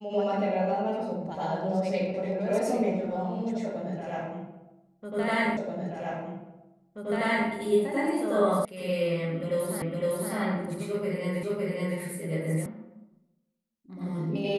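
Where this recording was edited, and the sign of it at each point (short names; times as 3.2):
5.57 repeat of the last 1.93 s
8.65 sound cut off
9.82 repeat of the last 0.51 s
11.43 repeat of the last 0.56 s
12.66 sound cut off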